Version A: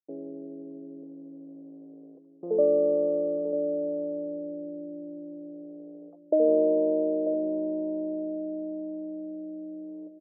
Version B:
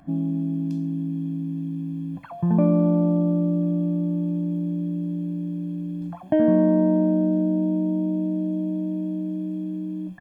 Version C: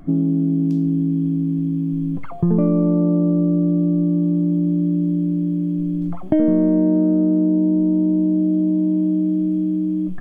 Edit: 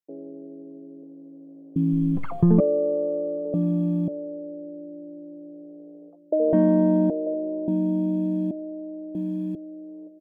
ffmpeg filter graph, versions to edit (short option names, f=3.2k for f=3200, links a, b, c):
-filter_complex "[1:a]asplit=4[a][b][c][d];[0:a]asplit=6[e][f][g][h][i][j];[e]atrim=end=1.762[k];[2:a]atrim=start=1.758:end=2.602[l];[f]atrim=start=2.598:end=3.542[m];[a]atrim=start=3.538:end=4.082[n];[g]atrim=start=4.078:end=6.532[o];[b]atrim=start=6.528:end=7.102[p];[h]atrim=start=7.098:end=7.682[q];[c]atrim=start=7.678:end=8.512[r];[i]atrim=start=8.508:end=9.152[s];[d]atrim=start=9.148:end=9.552[t];[j]atrim=start=9.548[u];[k][l]acrossfade=d=0.004:c1=hsin:c2=hsin[v];[v][m]acrossfade=d=0.004:c1=hsin:c2=hsin[w];[w][n]acrossfade=d=0.004:c1=hsin:c2=hsin[x];[x][o]acrossfade=d=0.004:c1=hsin:c2=hsin[y];[y][p]acrossfade=d=0.004:c1=hsin:c2=hsin[z];[z][q]acrossfade=d=0.004:c1=hsin:c2=hsin[aa];[aa][r]acrossfade=d=0.004:c1=hsin:c2=hsin[ab];[ab][s]acrossfade=d=0.004:c1=hsin:c2=hsin[ac];[ac][t]acrossfade=d=0.004:c1=hsin:c2=hsin[ad];[ad][u]acrossfade=d=0.004:c1=hsin:c2=hsin"